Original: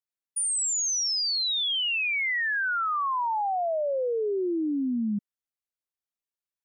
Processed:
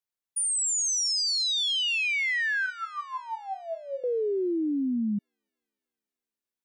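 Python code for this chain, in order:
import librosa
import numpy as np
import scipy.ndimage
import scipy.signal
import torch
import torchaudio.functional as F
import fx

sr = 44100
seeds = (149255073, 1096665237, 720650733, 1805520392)

y = fx.stiff_resonator(x, sr, f0_hz=67.0, decay_s=0.39, stiffness=0.008, at=(2.66, 4.04))
y = fx.echo_wet_highpass(y, sr, ms=303, feedback_pct=57, hz=4000.0, wet_db=-14.0)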